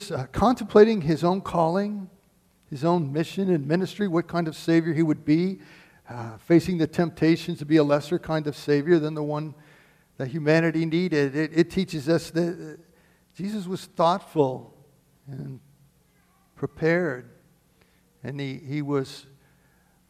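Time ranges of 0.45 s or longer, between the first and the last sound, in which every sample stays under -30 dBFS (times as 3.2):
2.02–2.72
5.54–6.11
9.49–10.2
12.7–13.4
14.58–15.33
15.52–16.63
17.2–18.25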